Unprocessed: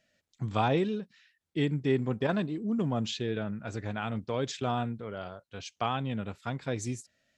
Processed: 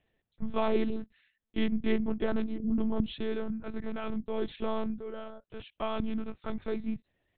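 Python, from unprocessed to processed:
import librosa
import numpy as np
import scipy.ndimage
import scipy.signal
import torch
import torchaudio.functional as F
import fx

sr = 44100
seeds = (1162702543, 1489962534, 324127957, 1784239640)

y = fx.low_shelf(x, sr, hz=480.0, db=8.5)
y = fx.lpc_monotone(y, sr, seeds[0], pitch_hz=220.0, order=8)
y = y * 10.0 ** (-5.5 / 20.0)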